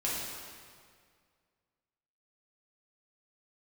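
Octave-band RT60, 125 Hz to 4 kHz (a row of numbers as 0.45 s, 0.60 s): 2.2 s, 2.1 s, 2.0 s, 1.9 s, 1.8 s, 1.6 s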